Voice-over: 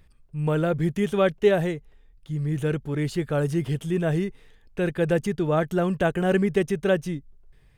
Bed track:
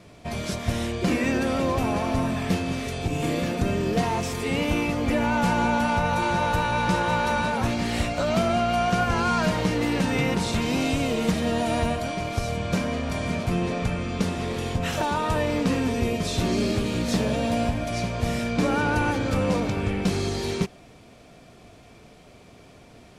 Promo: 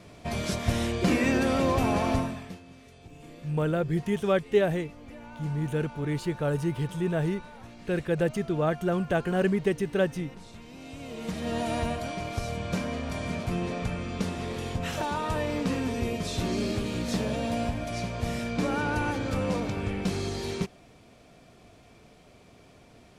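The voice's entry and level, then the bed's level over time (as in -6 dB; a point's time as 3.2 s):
3.10 s, -3.5 dB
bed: 2.14 s -0.5 dB
2.61 s -22 dB
10.74 s -22 dB
11.56 s -5 dB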